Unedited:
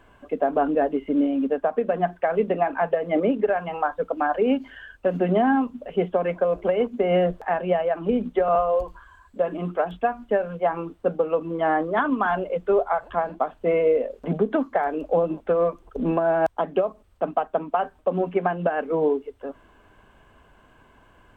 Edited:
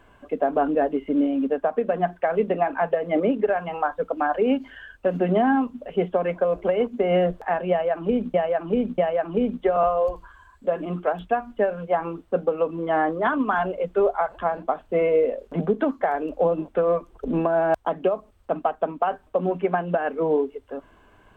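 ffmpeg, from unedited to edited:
ffmpeg -i in.wav -filter_complex "[0:a]asplit=3[link_01][link_02][link_03];[link_01]atrim=end=8.342[link_04];[link_02]atrim=start=7.698:end=8.342[link_05];[link_03]atrim=start=7.698[link_06];[link_04][link_05]acrossfade=duration=0.004:curve1=hsin:curve2=hsin[link_07];[link_07][link_06]acrossfade=duration=0.004:curve1=hsin:curve2=hsin" out.wav

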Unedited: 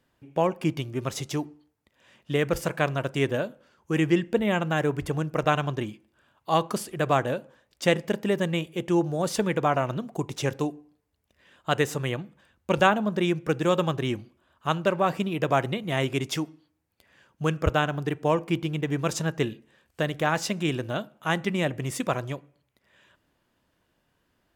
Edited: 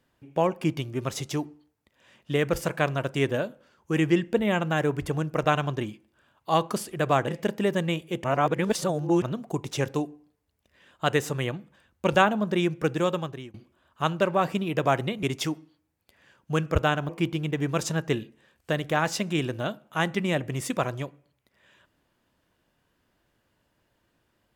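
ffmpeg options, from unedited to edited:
ffmpeg -i in.wav -filter_complex "[0:a]asplit=7[link_01][link_02][link_03][link_04][link_05][link_06][link_07];[link_01]atrim=end=7.282[link_08];[link_02]atrim=start=7.928:end=8.892[link_09];[link_03]atrim=start=8.888:end=9.872,asetpts=PTS-STARTPTS,areverse[link_10];[link_04]atrim=start=9.868:end=14.19,asetpts=PTS-STARTPTS,afade=type=out:start_time=3.682:duration=0.64:silence=0.0630957[link_11];[link_05]atrim=start=14.19:end=15.882,asetpts=PTS-STARTPTS,afade=type=in:duration=0.004:curve=hsin:silence=0.0630957[link_12];[link_06]atrim=start=16.138:end=18.002[link_13];[link_07]atrim=start=18.388[link_14];[link_08][link_09]acrossfade=duration=0.004:curve1=hsin:curve2=hsin[link_15];[link_15][link_10]acrossfade=duration=0.004:curve1=hsin:curve2=hsin[link_16];[link_11][link_12]concat=n=2:v=0:a=1[link_17];[link_16][link_17]acrossfade=duration=0.004:curve1=hsin:curve2=hsin[link_18];[link_18][link_13]acrossfade=duration=0.004:curve1=hsin:curve2=hsin[link_19];[link_19][link_14]acrossfade=duration=0.004:curve1=hsin:curve2=hsin" out.wav

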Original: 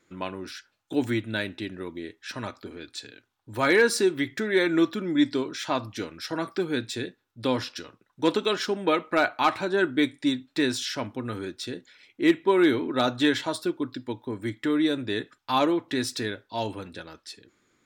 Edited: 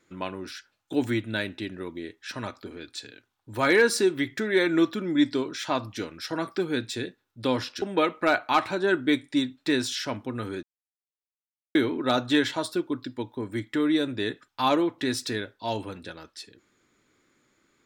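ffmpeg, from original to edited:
ffmpeg -i in.wav -filter_complex "[0:a]asplit=4[link_01][link_02][link_03][link_04];[link_01]atrim=end=7.822[link_05];[link_02]atrim=start=8.718:end=11.53,asetpts=PTS-STARTPTS,afade=type=out:start_time=2.808:duration=0.004:curve=hsin[link_06];[link_03]atrim=start=11.53:end=12.65,asetpts=PTS-STARTPTS,volume=0[link_07];[link_04]atrim=start=12.65,asetpts=PTS-STARTPTS,afade=type=in:duration=0.004:curve=hsin[link_08];[link_06][link_07][link_08]concat=n=3:v=0:a=1[link_09];[link_05][link_09]acrossfade=duration=0.004:curve1=hsin:curve2=hsin" out.wav

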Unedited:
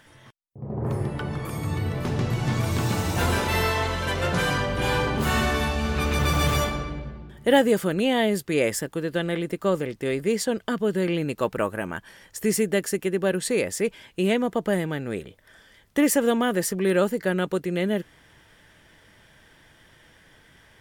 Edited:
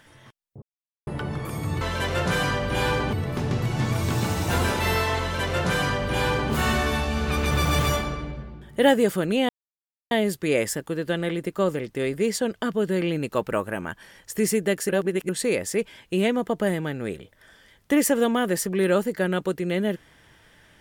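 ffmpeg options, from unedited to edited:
ffmpeg -i in.wav -filter_complex "[0:a]asplit=8[link_01][link_02][link_03][link_04][link_05][link_06][link_07][link_08];[link_01]atrim=end=0.62,asetpts=PTS-STARTPTS,afade=type=out:start_time=0.616:duration=0.004:curve=hsin[link_09];[link_02]atrim=start=0.62:end=1.07,asetpts=PTS-STARTPTS,volume=0[link_10];[link_03]atrim=start=1.07:end=1.812,asetpts=PTS-STARTPTS,afade=type=in:duration=0.004:curve=hsin[link_11];[link_04]atrim=start=3.878:end=5.202[link_12];[link_05]atrim=start=1.808:end=8.17,asetpts=PTS-STARTPTS,afade=type=out:start_time=6.358:duration=0.004:curve=hsin,apad=pad_dur=0.62[link_13];[link_06]atrim=start=8.17:end=12.952,asetpts=PTS-STARTPTS,afade=type=in:duration=0.004:curve=hsin[link_14];[link_07]atrim=start=12.948:end=13.352,asetpts=PTS-STARTPTS,areverse[link_15];[link_08]atrim=start=13.348[link_16];[link_09][link_10][link_11]concat=n=3:v=0:a=1[link_17];[link_17][link_12]acrossfade=duration=0.004:curve1=hsin:curve2=hsin[link_18];[link_13][link_14]concat=n=2:v=0:a=1[link_19];[link_18][link_19]acrossfade=duration=0.004:curve1=hsin:curve2=hsin[link_20];[link_20][link_15]acrossfade=duration=0.004:curve1=hsin:curve2=hsin[link_21];[link_21][link_16]acrossfade=duration=0.004:curve1=hsin:curve2=hsin" out.wav

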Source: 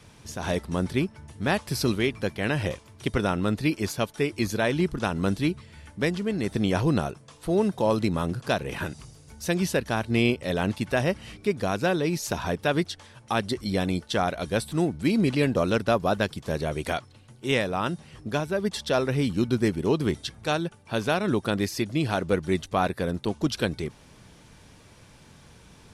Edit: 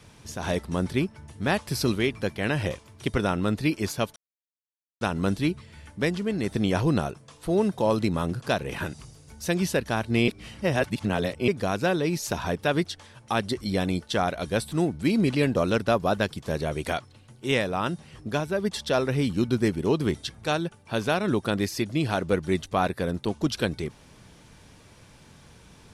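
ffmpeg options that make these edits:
ffmpeg -i in.wav -filter_complex "[0:a]asplit=5[link_01][link_02][link_03][link_04][link_05];[link_01]atrim=end=4.16,asetpts=PTS-STARTPTS,afade=type=out:start_time=4.156:duration=0.004:curve=hsin[link_06];[link_02]atrim=start=4.16:end=5.01,asetpts=PTS-STARTPTS,volume=0[link_07];[link_03]atrim=start=5.01:end=10.282,asetpts=PTS-STARTPTS,afade=type=in:duration=0.004:curve=hsin[link_08];[link_04]atrim=start=10.278:end=11.482,asetpts=PTS-STARTPTS,areverse[link_09];[link_05]atrim=start=11.478[link_10];[link_06][link_07][link_08]concat=n=3:v=0:a=1[link_11];[link_11][link_09]acrossfade=duration=0.004:curve1=hsin:curve2=hsin[link_12];[link_12][link_10]acrossfade=duration=0.004:curve1=hsin:curve2=hsin" out.wav

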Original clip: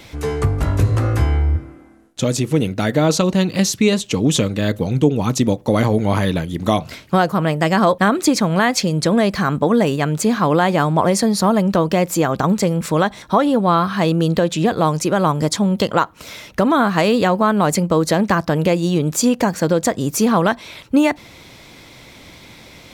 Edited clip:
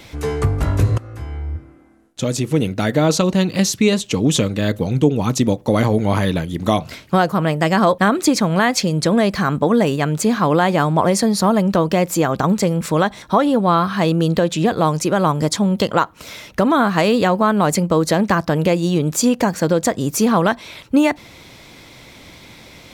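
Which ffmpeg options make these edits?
ffmpeg -i in.wav -filter_complex "[0:a]asplit=2[link_01][link_02];[link_01]atrim=end=0.98,asetpts=PTS-STARTPTS,afade=type=out:start_time=0.976:duration=0.004:curve=hsin:silence=0.0841395[link_03];[link_02]atrim=start=0.98,asetpts=PTS-STARTPTS,afade=type=in:duration=1.67:silence=0.0841395[link_04];[link_03][link_04]concat=n=2:v=0:a=1" out.wav

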